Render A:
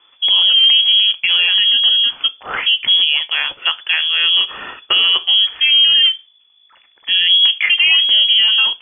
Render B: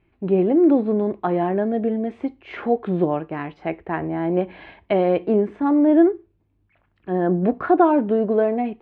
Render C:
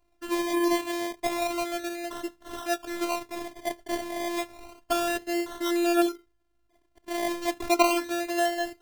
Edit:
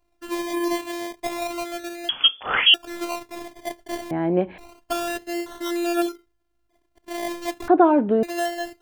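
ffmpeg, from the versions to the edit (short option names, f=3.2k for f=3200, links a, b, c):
-filter_complex "[1:a]asplit=2[a][b];[2:a]asplit=4[c][d][e][f];[c]atrim=end=2.092[g];[0:a]atrim=start=2.088:end=2.742[h];[d]atrim=start=2.738:end=4.112[i];[a]atrim=start=4.108:end=4.582[j];[e]atrim=start=4.578:end=7.682[k];[b]atrim=start=7.678:end=8.232[l];[f]atrim=start=8.228[m];[g][h]acrossfade=d=0.004:c1=hsin:c2=hsin[n];[n][i]acrossfade=d=0.004:c1=hsin:c2=hsin[o];[o][j]acrossfade=d=0.004:c1=hsin:c2=hsin[p];[p][k]acrossfade=d=0.004:c1=hsin:c2=hsin[q];[q][l]acrossfade=d=0.004:c1=hsin:c2=hsin[r];[r][m]acrossfade=d=0.004:c1=hsin:c2=hsin"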